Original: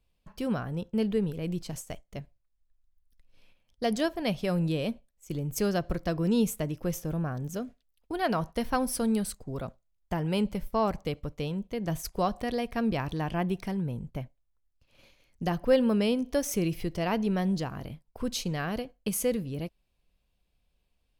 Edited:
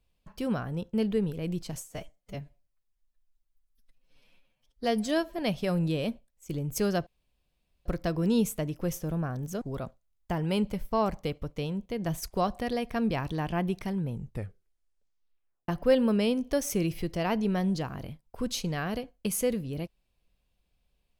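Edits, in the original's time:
0:01.80–0:04.19: time-stretch 1.5×
0:05.87: splice in room tone 0.79 s
0:07.63–0:09.43: remove
0:13.92: tape stop 1.58 s

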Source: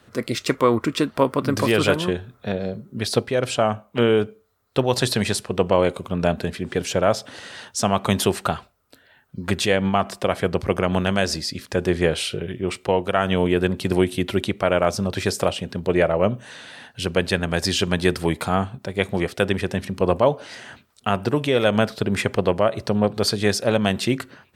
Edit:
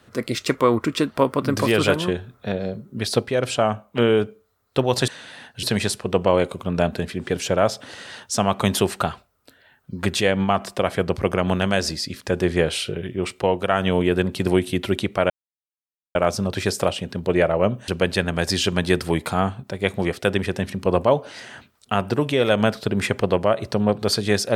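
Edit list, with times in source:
0:14.75: splice in silence 0.85 s
0:16.48–0:17.03: move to 0:05.08

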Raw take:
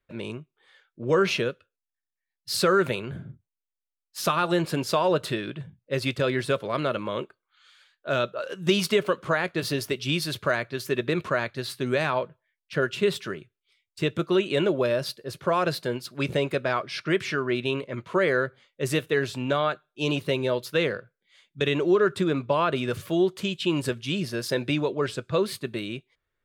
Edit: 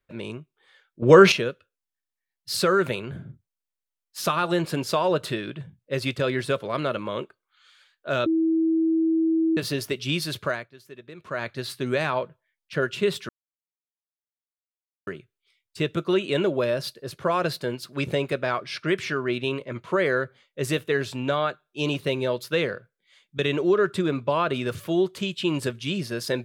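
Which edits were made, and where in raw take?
0:01.02–0:01.32: clip gain +9.5 dB
0:08.26–0:09.57: beep over 324 Hz −18.5 dBFS
0:10.42–0:11.50: duck −17.5 dB, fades 0.29 s
0:13.29: splice in silence 1.78 s

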